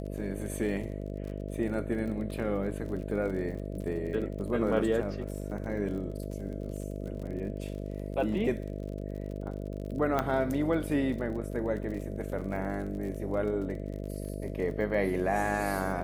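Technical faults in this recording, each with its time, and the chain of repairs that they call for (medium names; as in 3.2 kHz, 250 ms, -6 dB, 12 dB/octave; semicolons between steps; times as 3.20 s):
buzz 50 Hz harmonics 13 -37 dBFS
crackle 46 per s -39 dBFS
10.19 s: pop -15 dBFS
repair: de-click; de-hum 50 Hz, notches 13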